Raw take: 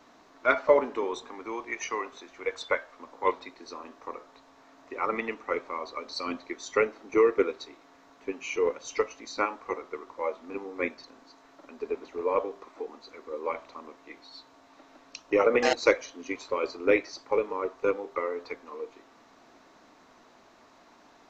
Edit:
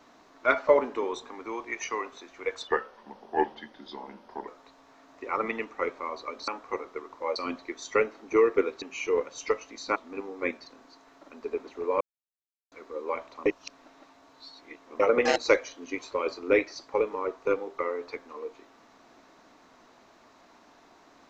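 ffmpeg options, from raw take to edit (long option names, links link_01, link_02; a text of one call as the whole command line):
ffmpeg -i in.wav -filter_complex "[0:a]asplit=11[link_01][link_02][link_03][link_04][link_05][link_06][link_07][link_08][link_09][link_10][link_11];[link_01]atrim=end=2.674[link_12];[link_02]atrim=start=2.67:end=4.17,asetpts=PTS-STARTPTS,asetrate=36603,aresample=44100[link_13];[link_03]atrim=start=4.166:end=6.172[link_14];[link_04]atrim=start=9.448:end=10.332[link_15];[link_05]atrim=start=6.168:end=7.632[link_16];[link_06]atrim=start=8.308:end=9.452[link_17];[link_07]atrim=start=10.328:end=12.38,asetpts=PTS-STARTPTS,afade=type=out:start_time=2.048:duration=0.004:curve=hsin[link_18];[link_08]atrim=start=12.38:end=13.09,asetpts=PTS-STARTPTS,volume=0[link_19];[link_09]atrim=start=13.09:end=13.832,asetpts=PTS-STARTPTS,afade=type=in:duration=0.004:curve=hsin[link_20];[link_10]atrim=start=13.828:end=15.372,asetpts=PTS-STARTPTS,areverse[link_21];[link_11]atrim=start=15.368[link_22];[link_12][link_13]acrossfade=duration=0.004:curve1=hsin:curve2=hsin[link_23];[link_23][link_14]acrossfade=duration=0.004:curve1=hsin:curve2=hsin[link_24];[link_24][link_15]acrossfade=duration=0.004:curve1=hsin:curve2=hsin[link_25];[link_25][link_16]acrossfade=duration=0.004:curve1=hsin:curve2=hsin[link_26];[link_26][link_17]acrossfade=duration=0.004:curve1=hsin:curve2=hsin[link_27];[link_18][link_19][link_20]concat=n=3:v=0:a=1[link_28];[link_27][link_28]acrossfade=duration=0.004:curve1=hsin:curve2=hsin[link_29];[link_29][link_21]acrossfade=duration=0.004:curve1=hsin:curve2=hsin[link_30];[link_30][link_22]acrossfade=duration=0.004:curve1=hsin:curve2=hsin" out.wav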